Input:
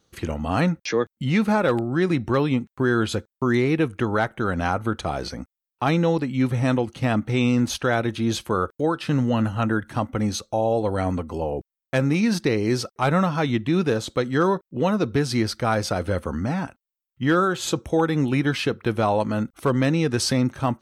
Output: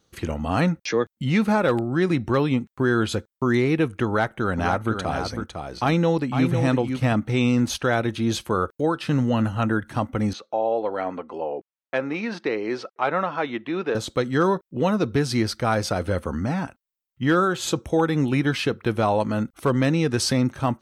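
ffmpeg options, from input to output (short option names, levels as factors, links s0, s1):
-filter_complex "[0:a]asettb=1/sr,asplit=3[s0][s1][s2];[s0]atrim=end=4.074[s3];[s1]atrim=start=4.07:end=7.13,asetpts=PTS-STARTPTS,afade=t=in:d=0.004:c=qsin,afade=t=out:st=3.056:d=0.004:c=qsin,aecho=1:1:504:0.473,atrim=end_sample=134946[s4];[s2]atrim=start=7.126[s5];[s3][s4]acrossfade=d=0.004:c1=hsin:c2=qsin[s6];[s6][s5]acrossfade=d=0.004:c1=qsin:c2=hsin,asettb=1/sr,asplit=3[s7][s8][s9];[s7]atrim=end=10.334[s10];[s8]atrim=start=10.33:end=13.95,asetpts=PTS-STARTPTS,afade=t=in:d=0.004:c=qsin,afade=t=out:st=3.616:d=0.004:c=qsin,highpass=380,lowpass=2800[s11];[s9]atrim=start=13.946[s12];[s10][s11]acrossfade=d=0.004:c1=hsin:c2=qsin[s13];[s13][s12]acrossfade=d=0.004:c1=qsin:c2=hsin"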